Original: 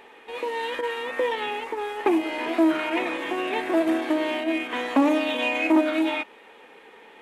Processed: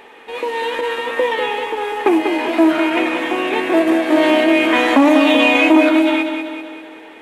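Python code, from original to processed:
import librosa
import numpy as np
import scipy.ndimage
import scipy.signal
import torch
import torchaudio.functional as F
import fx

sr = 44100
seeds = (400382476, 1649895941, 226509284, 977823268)

p1 = x + fx.echo_feedback(x, sr, ms=194, feedback_pct=54, wet_db=-7, dry=0)
p2 = fx.env_flatten(p1, sr, amount_pct=50, at=(4.12, 5.89))
y = F.gain(torch.from_numpy(p2), 7.0).numpy()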